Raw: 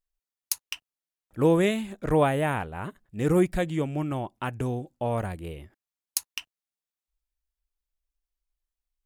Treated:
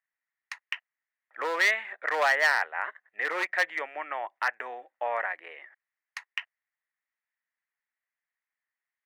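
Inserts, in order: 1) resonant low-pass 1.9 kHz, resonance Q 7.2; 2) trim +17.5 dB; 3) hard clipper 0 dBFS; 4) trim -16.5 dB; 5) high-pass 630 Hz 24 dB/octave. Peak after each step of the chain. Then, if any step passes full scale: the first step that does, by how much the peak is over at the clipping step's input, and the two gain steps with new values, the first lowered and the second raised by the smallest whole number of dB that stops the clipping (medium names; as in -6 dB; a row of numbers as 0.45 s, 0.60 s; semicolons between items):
-8.5 dBFS, +9.0 dBFS, 0.0 dBFS, -16.5 dBFS, -11.0 dBFS; step 2, 9.0 dB; step 2 +8.5 dB, step 4 -7.5 dB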